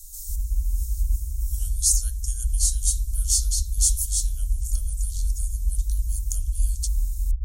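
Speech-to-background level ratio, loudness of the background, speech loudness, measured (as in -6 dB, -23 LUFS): 2.5 dB, -29.0 LUFS, -26.5 LUFS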